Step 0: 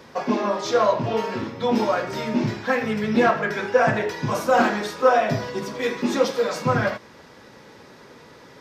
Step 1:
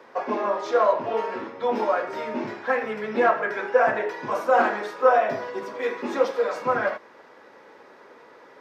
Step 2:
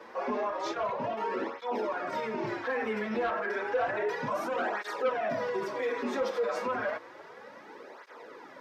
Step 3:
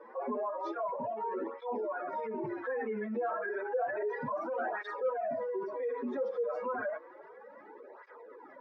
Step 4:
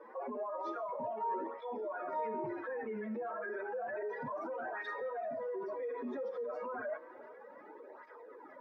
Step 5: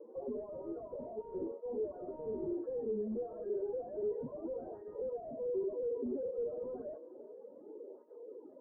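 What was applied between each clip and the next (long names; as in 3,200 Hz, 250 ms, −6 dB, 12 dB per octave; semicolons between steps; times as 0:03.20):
three-way crossover with the lows and the highs turned down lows −22 dB, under 310 Hz, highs −13 dB, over 2,300 Hz
in parallel at −10 dB: sine wavefolder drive 8 dB, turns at −6.5 dBFS; on the sum: brickwall limiter −19 dBFS, peak gain reduction 11 dB; through-zero flanger with one copy inverted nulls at 0.31 Hz, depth 7.7 ms; level −3 dB
expanding power law on the bin magnitudes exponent 1.9; level −3 dB
brickwall limiter −32 dBFS, peak gain reduction 8 dB; tuned comb filter 310 Hz, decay 0.75 s, mix 70%; feedback echo with a low-pass in the loop 386 ms, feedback 61%, low-pass 2,000 Hz, level −21 dB; level +8.5 dB
in parallel at −4 dB: wrap-around overflow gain 34 dB; on the sum: transistor ladder low-pass 510 Hz, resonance 45%; level +4.5 dB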